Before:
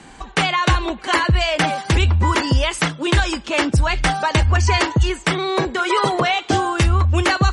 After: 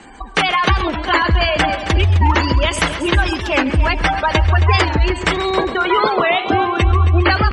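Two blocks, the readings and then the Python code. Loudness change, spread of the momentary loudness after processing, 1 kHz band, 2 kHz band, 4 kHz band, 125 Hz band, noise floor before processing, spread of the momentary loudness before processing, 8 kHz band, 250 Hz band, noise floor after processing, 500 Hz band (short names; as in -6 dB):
+2.5 dB, 4 LU, +3.0 dB, +3.0 dB, +1.5 dB, +2.0 dB, -41 dBFS, 4 LU, -4.0 dB, +2.0 dB, -27 dBFS, +3.5 dB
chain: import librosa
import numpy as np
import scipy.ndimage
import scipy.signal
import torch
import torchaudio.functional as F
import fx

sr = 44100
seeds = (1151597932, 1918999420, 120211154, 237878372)

y = fx.peak_eq(x, sr, hz=140.0, db=-14.0, octaves=0.48)
y = y + 10.0 ** (-14.0 / 20.0) * np.pad(y, (int(108 * sr / 1000.0), 0))[:len(y)]
y = fx.spec_gate(y, sr, threshold_db=-20, keep='strong')
y = fx.echo_heads(y, sr, ms=135, heads='first and second', feedback_pct=52, wet_db=-14)
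y = fx.record_warp(y, sr, rpm=45.0, depth_cents=160.0)
y = y * librosa.db_to_amplitude(3.0)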